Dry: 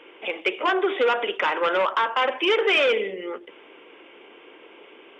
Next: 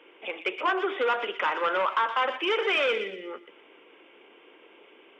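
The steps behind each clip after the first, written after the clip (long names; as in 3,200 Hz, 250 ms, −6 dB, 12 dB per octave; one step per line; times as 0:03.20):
high-pass filter 120 Hz 24 dB per octave
delay with a high-pass on its return 120 ms, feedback 36%, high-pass 2,100 Hz, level −7.5 dB
dynamic equaliser 1,200 Hz, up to +5 dB, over −37 dBFS, Q 1.3
level −6.5 dB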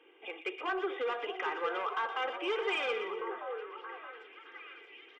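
comb filter 2.5 ms, depth 58%
soft clipping −14 dBFS, distortion −24 dB
echo through a band-pass that steps 624 ms, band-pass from 570 Hz, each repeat 0.7 octaves, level −4.5 dB
level −9 dB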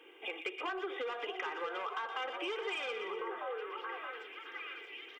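high-shelf EQ 4,000 Hz +8.5 dB
downward compressor, threshold −39 dBFS, peak gain reduction 11 dB
level +3 dB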